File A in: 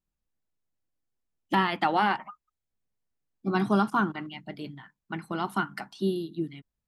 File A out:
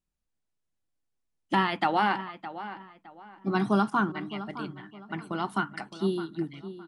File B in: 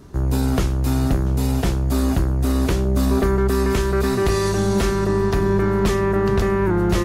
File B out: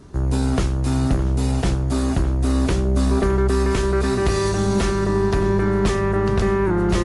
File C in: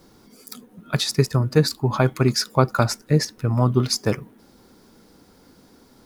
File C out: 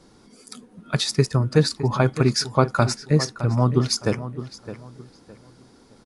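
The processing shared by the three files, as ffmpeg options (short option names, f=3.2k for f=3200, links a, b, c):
-filter_complex "[0:a]asplit=2[a][b];[b]adelay=613,lowpass=f=3.2k:p=1,volume=-13dB,asplit=2[c][d];[d]adelay=613,lowpass=f=3.2k:p=1,volume=0.3,asplit=2[e][f];[f]adelay=613,lowpass=f=3.2k:p=1,volume=0.3[g];[a][c][e][g]amix=inputs=4:normalize=0" -ar 24000 -c:a libmp3lame -b:a 80k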